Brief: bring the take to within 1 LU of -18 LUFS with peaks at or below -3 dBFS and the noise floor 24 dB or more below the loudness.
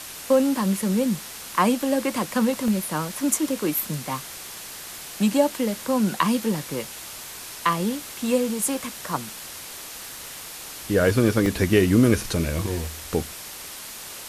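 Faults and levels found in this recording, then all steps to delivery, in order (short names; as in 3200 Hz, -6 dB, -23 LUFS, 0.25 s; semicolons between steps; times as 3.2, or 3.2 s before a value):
dropouts 3; longest dropout 1.2 ms; noise floor -38 dBFS; noise floor target -48 dBFS; loudness -23.5 LUFS; peak -4.5 dBFS; loudness target -18.0 LUFS
-> interpolate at 2.68/11.46/12.85, 1.2 ms; noise print and reduce 10 dB; gain +5.5 dB; limiter -3 dBFS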